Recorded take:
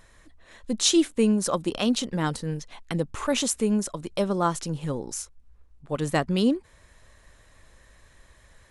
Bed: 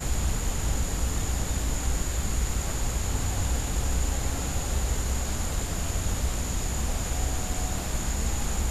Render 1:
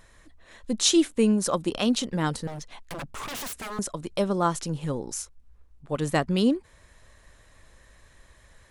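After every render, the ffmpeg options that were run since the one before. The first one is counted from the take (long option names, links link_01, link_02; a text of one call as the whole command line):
ffmpeg -i in.wav -filter_complex "[0:a]asettb=1/sr,asplit=3[link_01][link_02][link_03];[link_01]atrim=end=2.474[link_04];[link_02]atrim=start=2.47:end=3.79,asetpts=PTS-STARTPTS,afade=type=in:duration=0.004:curve=qsin,afade=type=out:start_time=1.316:duration=0.004:curve=qsin,aeval=exprs='0.0316*(abs(mod(val(0)/0.0316+3,4)-2)-1)':channel_layout=same[link_05];[link_03]atrim=start=3.786[link_06];[link_04][link_05]acrossfade=duration=0.004:curve1=hsin:curve2=qsin[link_07];[link_07][link_06]acrossfade=duration=0.004:curve1=qsin:curve2=hsin" out.wav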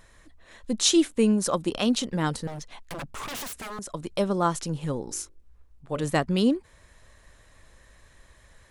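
ffmpeg -i in.wav -filter_complex "[0:a]asettb=1/sr,asplit=3[link_01][link_02][link_03];[link_01]atrim=end=3.434[link_04];[link_02]atrim=start=3.43:end=3.93,asetpts=PTS-STARTPTS,afade=type=in:duration=0.004:curve=qsin,afade=type=out:start_time=0.496:duration=0.004:curve=qsin,acompressor=threshold=-33dB:ratio=6:attack=3.2:release=140:knee=1:detection=peak[link_05];[link_03]atrim=start=3.926[link_06];[link_04][link_05]acrossfade=duration=0.004:curve1=hsin:curve2=qsin[link_07];[link_07][link_06]acrossfade=duration=0.004:curve1=qsin:curve2=hsin,asettb=1/sr,asplit=3[link_08][link_09][link_10];[link_08]atrim=end=5.034[link_11];[link_09]atrim=start=5.03:end=6.04,asetpts=PTS-STARTPTS,afade=type=in:duration=0.004:curve=qsin,afade=type=out:start_time=1.006:duration=0.004:curve=qsin,bandreject=frequency=49.48:width_type=h:width=4,bandreject=frequency=98.96:width_type=h:width=4,bandreject=frequency=148.44:width_type=h:width=4,bandreject=frequency=197.92:width_type=h:width=4,bandreject=frequency=247.4:width_type=h:width=4,bandreject=frequency=296.88:width_type=h:width=4,bandreject=frequency=346.36:width_type=h:width=4,bandreject=frequency=395.84:width_type=h:width=4,bandreject=frequency=445.32:width_type=h:width=4,bandreject=frequency=494.8:width_type=h:width=4,bandreject=frequency=544.28:width_type=h:width=4,bandreject=frequency=593.76:width_type=h:width=4[link_12];[link_10]atrim=start=6.036[link_13];[link_11][link_12]acrossfade=duration=0.004:curve1=hsin:curve2=qsin[link_14];[link_14][link_13]acrossfade=duration=0.004:curve1=qsin:curve2=hsin" out.wav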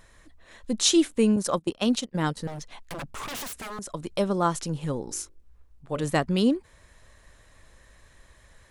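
ffmpeg -i in.wav -filter_complex "[0:a]asettb=1/sr,asplit=3[link_01][link_02][link_03];[link_01]atrim=end=1.364[link_04];[link_02]atrim=start=1.36:end=2.37,asetpts=PTS-STARTPTS,afade=type=in:duration=0.004:curve=qsin,afade=type=out:start_time=1.006:duration=0.004:curve=qsin,agate=range=-21dB:threshold=-29dB:ratio=16:release=100:detection=peak[link_05];[link_03]atrim=start=2.366[link_06];[link_04][link_05]acrossfade=duration=0.004:curve1=hsin:curve2=qsin[link_07];[link_07][link_06]acrossfade=duration=0.004:curve1=qsin:curve2=hsin" out.wav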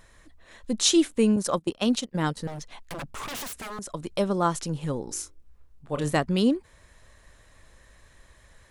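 ffmpeg -i in.wav -filter_complex "[0:a]asettb=1/sr,asplit=3[link_01][link_02][link_03];[link_01]atrim=end=5.204[link_04];[link_02]atrim=start=5.2:end=6.17,asetpts=PTS-STARTPTS,afade=type=in:duration=0.004:curve=qsin,afade=type=out:start_time=0.966:duration=0.004:curve=qsin,asplit=2[link_05][link_06];[link_06]adelay=27,volume=-9dB[link_07];[link_05][link_07]amix=inputs=2:normalize=0,atrim=end_sample=42777[link_08];[link_03]atrim=start=6.166[link_09];[link_04][link_08]acrossfade=duration=0.004:curve1=hsin:curve2=qsin[link_10];[link_10][link_09]acrossfade=duration=0.004:curve1=qsin:curve2=hsin" out.wav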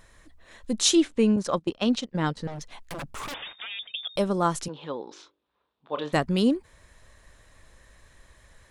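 ffmpeg -i in.wav -filter_complex "[0:a]asettb=1/sr,asplit=3[link_01][link_02][link_03];[link_01]atrim=end=0.954[link_04];[link_02]atrim=start=0.95:end=2.61,asetpts=PTS-STARTPTS,afade=type=in:duration=0.004:curve=qsin,afade=type=out:start_time=1.656:duration=0.004:curve=qsin,lowpass=5300[link_05];[link_03]atrim=start=2.606[link_06];[link_04][link_05]acrossfade=duration=0.004:curve1=hsin:curve2=qsin[link_07];[link_07][link_06]acrossfade=duration=0.004:curve1=qsin:curve2=hsin,asettb=1/sr,asplit=3[link_08][link_09][link_10];[link_08]atrim=end=3.344[link_11];[link_09]atrim=start=3.34:end=4.16,asetpts=PTS-STARTPTS,afade=type=in:duration=0.004:curve=qsin,afade=type=out:start_time=0.816:duration=0.004:curve=qsin,lowpass=frequency=3100:width_type=q:width=0.5098,lowpass=frequency=3100:width_type=q:width=0.6013,lowpass=frequency=3100:width_type=q:width=0.9,lowpass=frequency=3100:width_type=q:width=2.563,afreqshift=-3700[link_12];[link_10]atrim=start=4.156[link_13];[link_11][link_12]acrossfade=duration=0.004:curve1=hsin:curve2=qsin[link_14];[link_14][link_13]acrossfade=duration=0.004:curve1=qsin:curve2=hsin,asettb=1/sr,asplit=3[link_15][link_16][link_17];[link_15]atrim=end=4.684[link_18];[link_16]atrim=start=4.68:end=6.13,asetpts=PTS-STARTPTS,afade=type=in:duration=0.004:curve=qsin,afade=type=out:start_time=1.446:duration=0.004:curve=qsin,highpass=360,equalizer=frequency=1000:width_type=q:width=4:gain=5,equalizer=frequency=2000:width_type=q:width=4:gain=-4,equalizer=frequency=3600:width_type=q:width=4:gain=9,lowpass=frequency=3900:width=0.5412,lowpass=frequency=3900:width=1.3066[link_19];[link_17]atrim=start=6.126[link_20];[link_18][link_19]acrossfade=duration=0.004:curve1=hsin:curve2=qsin[link_21];[link_21][link_20]acrossfade=duration=0.004:curve1=qsin:curve2=hsin" out.wav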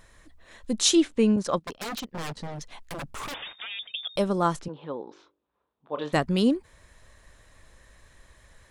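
ffmpeg -i in.wav -filter_complex "[0:a]asettb=1/sr,asplit=3[link_01][link_02][link_03];[link_01]atrim=end=1.614[link_04];[link_02]atrim=start=1.61:end=3.39,asetpts=PTS-STARTPTS,afade=type=in:duration=0.004:curve=qsin,afade=type=out:start_time=1.776:duration=0.004:curve=qsin,aeval=exprs='0.0376*(abs(mod(val(0)/0.0376+3,4)-2)-1)':channel_layout=same[link_05];[link_03]atrim=start=3.386[link_06];[link_04][link_05]acrossfade=duration=0.004:curve1=hsin:curve2=qsin[link_07];[link_07][link_06]acrossfade=duration=0.004:curve1=qsin:curve2=hsin,asplit=3[link_08][link_09][link_10];[link_08]afade=type=out:start_time=4.55:duration=0.02[link_11];[link_09]lowpass=frequency=1200:poles=1,afade=type=in:start_time=4.55:duration=0.02,afade=type=out:start_time=5.99:duration=0.02[link_12];[link_10]afade=type=in:start_time=5.99:duration=0.02[link_13];[link_11][link_12][link_13]amix=inputs=3:normalize=0" out.wav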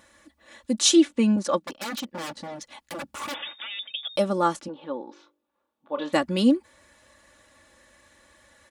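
ffmpeg -i in.wav -af "highpass=130,aecho=1:1:3.5:0.72" out.wav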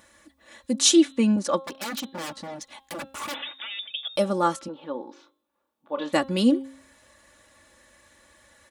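ffmpeg -i in.wav -af "highshelf=frequency=8600:gain=4.5,bandreject=frequency=268.7:width_type=h:width=4,bandreject=frequency=537.4:width_type=h:width=4,bandreject=frequency=806.1:width_type=h:width=4,bandreject=frequency=1074.8:width_type=h:width=4,bandreject=frequency=1343.5:width_type=h:width=4,bandreject=frequency=1612.2:width_type=h:width=4,bandreject=frequency=1880.9:width_type=h:width=4,bandreject=frequency=2149.6:width_type=h:width=4,bandreject=frequency=2418.3:width_type=h:width=4,bandreject=frequency=2687:width_type=h:width=4,bandreject=frequency=2955.7:width_type=h:width=4,bandreject=frequency=3224.4:width_type=h:width=4,bandreject=frequency=3493.1:width_type=h:width=4,bandreject=frequency=3761.8:width_type=h:width=4,bandreject=frequency=4030.5:width_type=h:width=4" out.wav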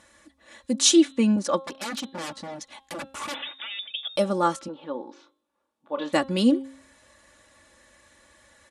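ffmpeg -i in.wav -af "lowpass=frequency=11000:width=0.5412,lowpass=frequency=11000:width=1.3066" out.wav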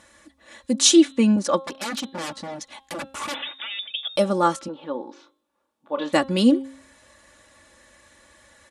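ffmpeg -i in.wav -af "volume=3dB,alimiter=limit=-3dB:level=0:latency=1" out.wav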